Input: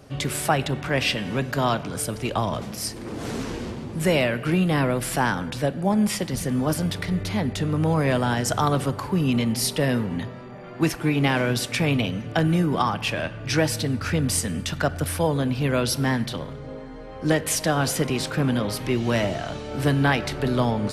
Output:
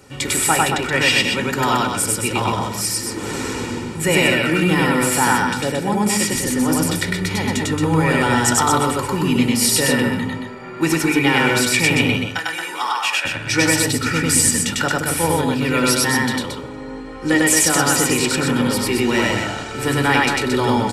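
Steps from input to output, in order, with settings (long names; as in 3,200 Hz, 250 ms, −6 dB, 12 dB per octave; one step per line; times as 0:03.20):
0:12.16–0:13.25: high-pass filter 1,000 Hz 12 dB per octave
loudspeakers that aren't time-aligned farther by 34 metres 0 dB, 77 metres −5 dB
convolution reverb RT60 0.35 s, pre-delay 3 ms, DRR 13 dB
level +5.5 dB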